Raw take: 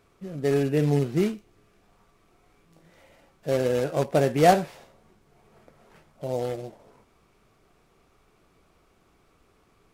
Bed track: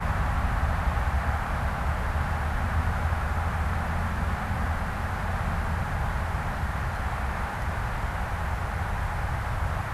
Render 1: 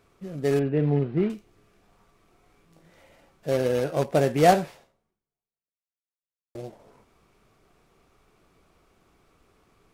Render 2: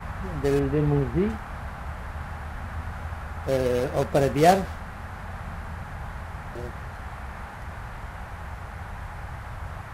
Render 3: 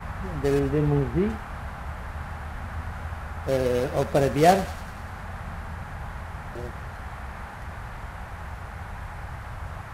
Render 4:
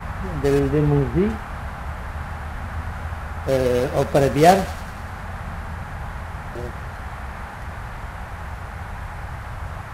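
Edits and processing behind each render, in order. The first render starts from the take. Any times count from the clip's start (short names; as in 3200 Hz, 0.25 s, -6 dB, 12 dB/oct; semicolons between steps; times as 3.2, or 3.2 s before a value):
0.59–1.3 air absorption 430 m; 3.53–4.03 notch 7400 Hz, Q 9.3; 4.68–6.55 fade out exponential
add bed track -7.5 dB
thinning echo 98 ms, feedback 67%, high-pass 1200 Hz, level -12.5 dB
gain +4.5 dB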